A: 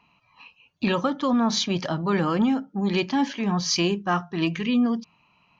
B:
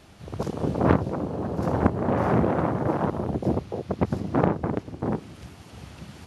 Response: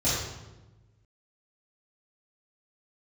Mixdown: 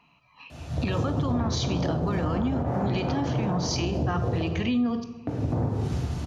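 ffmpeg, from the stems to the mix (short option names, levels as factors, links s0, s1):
-filter_complex "[0:a]volume=1,asplit=2[s0][s1];[s1]volume=0.0708[s2];[1:a]equalizer=f=870:w=4.9:g=5,acompressor=threshold=0.0355:ratio=6,adelay=500,volume=0.75,asplit=3[s3][s4][s5];[s3]atrim=end=4.49,asetpts=PTS-STARTPTS,afade=t=out:st=4.486:d=0.004:c=hsin[s6];[s4]atrim=start=4.49:end=5.27,asetpts=PTS-STARTPTS,volume=0[s7];[s5]atrim=start=5.27,asetpts=PTS-STARTPTS,afade=t=in:d=0.004:c=hsin[s8];[s6][s7][s8]concat=n=3:v=0:a=1,asplit=2[s9][s10];[s10]volume=0.596[s11];[2:a]atrim=start_sample=2205[s12];[s2][s11]amix=inputs=2:normalize=0[s13];[s13][s12]afir=irnorm=-1:irlink=0[s14];[s0][s9][s14]amix=inputs=3:normalize=0,alimiter=limit=0.126:level=0:latency=1:release=145"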